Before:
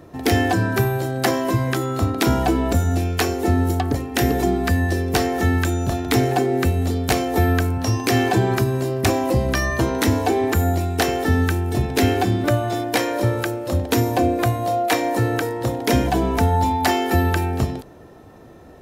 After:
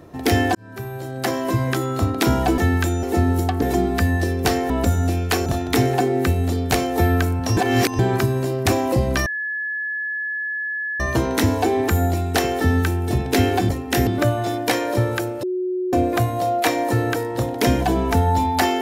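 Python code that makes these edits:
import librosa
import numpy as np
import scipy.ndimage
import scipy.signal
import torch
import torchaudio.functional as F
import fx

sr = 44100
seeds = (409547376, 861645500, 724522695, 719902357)

y = fx.edit(x, sr, fx.fade_in_span(start_s=0.55, length_s=1.08),
    fx.swap(start_s=2.58, length_s=0.76, other_s=5.39, other_length_s=0.45),
    fx.move(start_s=3.93, length_s=0.38, to_s=12.33),
    fx.reverse_span(start_s=7.95, length_s=0.42),
    fx.insert_tone(at_s=9.64, length_s=1.74, hz=1710.0, db=-23.0),
    fx.bleep(start_s=13.69, length_s=0.5, hz=366.0, db=-20.5), tone=tone)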